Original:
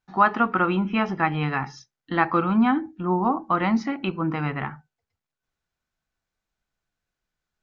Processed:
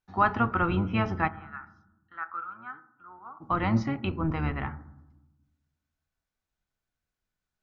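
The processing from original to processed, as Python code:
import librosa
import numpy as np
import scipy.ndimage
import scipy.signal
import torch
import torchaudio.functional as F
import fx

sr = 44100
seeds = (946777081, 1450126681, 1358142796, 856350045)

y = fx.octave_divider(x, sr, octaves=1, level_db=-1.0)
y = fx.bandpass_q(y, sr, hz=1400.0, q=8.4, at=(1.27, 3.4), fade=0.02)
y = fx.rev_fdn(y, sr, rt60_s=0.96, lf_ratio=1.6, hf_ratio=0.25, size_ms=72.0, drr_db=14.5)
y = y * 10.0 ** (-5.0 / 20.0)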